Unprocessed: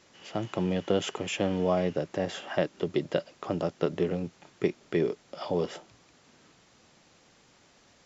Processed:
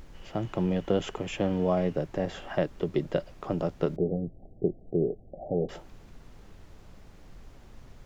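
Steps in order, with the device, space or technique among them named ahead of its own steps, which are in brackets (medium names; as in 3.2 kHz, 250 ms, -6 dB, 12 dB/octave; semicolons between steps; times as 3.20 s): car interior (peaking EQ 130 Hz +4.5 dB 0.86 oct; treble shelf 2.5 kHz -8 dB; brown noise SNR 16 dB); 3.96–5.69 s: Chebyshev low-pass 780 Hz, order 8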